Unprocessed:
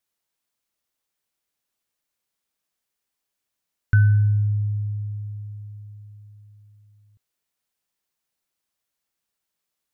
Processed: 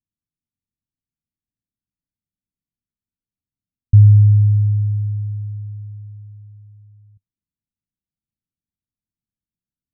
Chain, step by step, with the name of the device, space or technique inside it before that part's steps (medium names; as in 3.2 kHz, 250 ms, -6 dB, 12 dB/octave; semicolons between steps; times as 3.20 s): the neighbour's flat through the wall (low-pass 250 Hz 24 dB/octave; peaking EQ 100 Hz +4 dB 0.57 oct); trim +4.5 dB